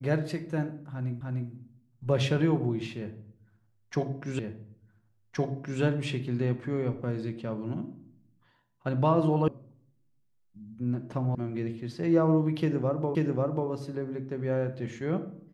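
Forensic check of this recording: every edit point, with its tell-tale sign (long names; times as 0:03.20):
0:01.21: the same again, the last 0.3 s
0:04.39: the same again, the last 1.42 s
0:09.48: cut off before it has died away
0:11.35: cut off before it has died away
0:13.15: the same again, the last 0.54 s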